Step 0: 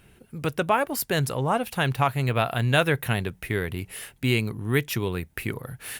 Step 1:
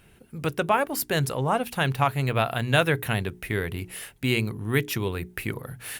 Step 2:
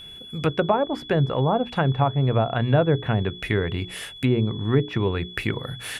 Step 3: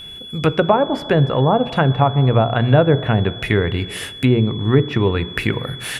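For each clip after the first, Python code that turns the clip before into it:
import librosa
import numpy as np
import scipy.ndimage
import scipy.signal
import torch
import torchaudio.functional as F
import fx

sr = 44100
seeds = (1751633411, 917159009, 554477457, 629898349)

y1 = fx.hum_notches(x, sr, base_hz=60, count=7)
y2 = fx.env_lowpass_down(y1, sr, base_hz=730.0, full_db=-20.5)
y2 = y2 + 10.0 ** (-44.0 / 20.0) * np.sin(2.0 * np.pi * 3400.0 * np.arange(len(y2)) / sr)
y2 = y2 * 10.0 ** (5.0 / 20.0)
y3 = fx.rev_plate(y2, sr, seeds[0], rt60_s=2.2, hf_ratio=0.3, predelay_ms=0, drr_db=15.5)
y3 = y3 * 10.0 ** (6.0 / 20.0)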